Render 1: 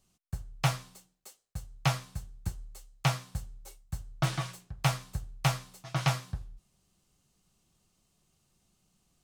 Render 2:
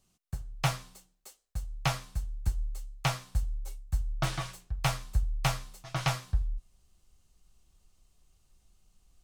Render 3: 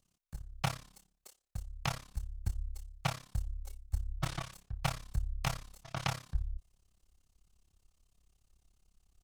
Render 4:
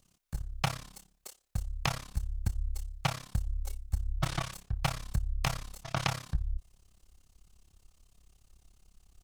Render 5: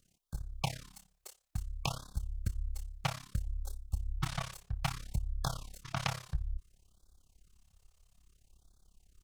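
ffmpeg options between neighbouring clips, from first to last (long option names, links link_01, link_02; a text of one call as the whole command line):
ffmpeg -i in.wav -af "asubboost=boost=9:cutoff=52" out.wav
ffmpeg -i in.wav -af "tremolo=f=34:d=0.947,volume=-1.5dB" out.wav
ffmpeg -i in.wav -af "acompressor=threshold=-35dB:ratio=4,volume=8.5dB" out.wav
ffmpeg -i in.wav -af "afftfilt=real='re*(1-between(b*sr/1024,240*pow(2400/240,0.5+0.5*sin(2*PI*0.6*pts/sr))/1.41,240*pow(2400/240,0.5+0.5*sin(2*PI*0.6*pts/sr))*1.41))':imag='im*(1-between(b*sr/1024,240*pow(2400/240,0.5+0.5*sin(2*PI*0.6*pts/sr))/1.41,240*pow(2400/240,0.5+0.5*sin(2*PI*0.6*pts/sr))*1.41))':win_size=1024:overlap=0.75,volume=-3.5dB" out.wav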